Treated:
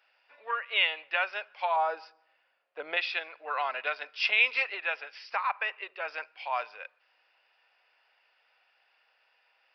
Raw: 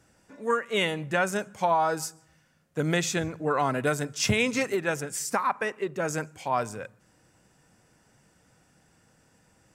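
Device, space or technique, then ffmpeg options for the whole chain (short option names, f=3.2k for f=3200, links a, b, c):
musical greeting card: -filter_complex "[0:a]asettb=1/sr,asplit=3[a][b][c];[a]atrim=end=1.764[d];[b]atrim=start=1.76:end=2.97,asetpts=PTS-STARTPTS,afade=t=in:d=0.004:c=qsin,afade=t=out:st=1.206:d=0.004:c=qsin,tiltshelf=f=1.1k:g=8.5[e];[c]atrim=start=2.966[f];[d][e]acrossfade=d=0.004:c1=hsin:c2=qsin[g];[g][f]acrossfade=d=0.004:c1=qsin:c2=hsin,aresample=11025,aresample=44100,highpass=f=650:w=0.5412,highpass=f=650:w=1.3066,equalizer=f=2.6k:t=o:w=0.57:g=11,volume=-4dB"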